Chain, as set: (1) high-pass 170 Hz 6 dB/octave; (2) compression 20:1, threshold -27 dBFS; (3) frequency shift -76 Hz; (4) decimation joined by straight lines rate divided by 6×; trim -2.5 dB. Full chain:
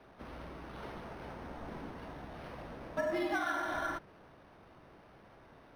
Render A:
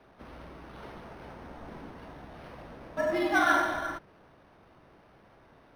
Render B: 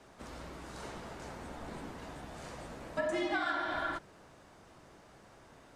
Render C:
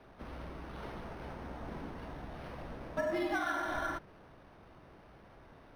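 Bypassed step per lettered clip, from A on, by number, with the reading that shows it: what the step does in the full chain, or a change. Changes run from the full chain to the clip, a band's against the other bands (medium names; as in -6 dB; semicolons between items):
2, crest factor change +2.5 dB; 4, 4 kHz band +4.0 dB; 1, 125 Hz band +3.0 dB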